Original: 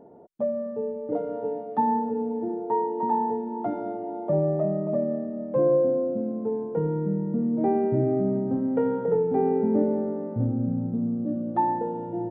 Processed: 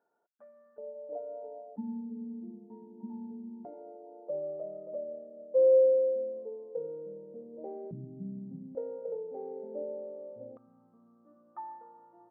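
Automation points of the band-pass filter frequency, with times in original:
band-pass filter, Q 13
1.5 kHz
from 0.78 s 620 Hz
from 1.76 s 210 Hz
from 3.65 s 520 Hz
from 7.91 s 170 Hz
from 8.75 s 550 Hz
from 10.57 s 1.2 kHz

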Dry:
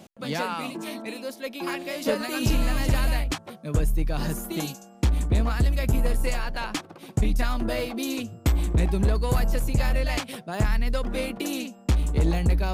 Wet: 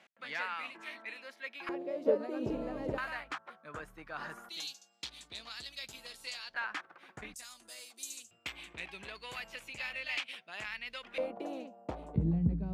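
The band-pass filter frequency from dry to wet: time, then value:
band-pass filter, Q 2.4
1.9 kHz
from 1.69 s 460 Hz
from 2.98 s 1.4 kHz
from 4.49 s 4 kHz
from 6.54 s 1.6 kHz
from 7.34 s 7.7 kHz
from 8.31 s 2.6 kHz
from 11.18 s 660 Hz
from 12.16 s 170 Hz

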